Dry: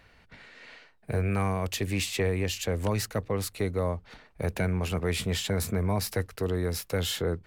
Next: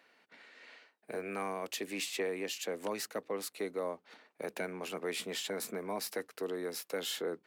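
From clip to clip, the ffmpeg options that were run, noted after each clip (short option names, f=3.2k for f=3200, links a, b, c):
-af "highpass=f=250:w=0.5412,highpass=f=250:w=1.3066,volume=-6dB"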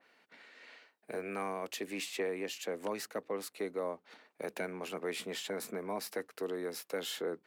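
-af "adynamicequalizer=threshold=0.00251:dfrequency=2500:dqfactor=0.7:tfrequency=2500:tqfactor=0.7:attack=5:release=100:ratio=0.375:range=2:mode=cutabove:tftype=highshelf"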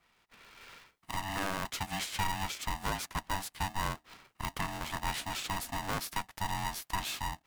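-af "dynaudnorm=f=120:g=7:m=6dB,aeval=exprs='val(0)*sgn(sin(2*PI*480*n/s))':c=same,volume=-3dB"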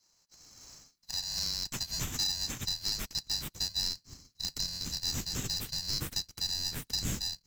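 -af "afftfilt=real='real(if(lt(b,736),b+184*(1-2*mod(floor(b/184),2)),b),0)':imag='imag(if(lt(b,736),b+184*(1-2*mod(floor(b/184),2)),b),0)':win_size=2048:overlap=0.75,asubboost=boost=9:cutoff=230"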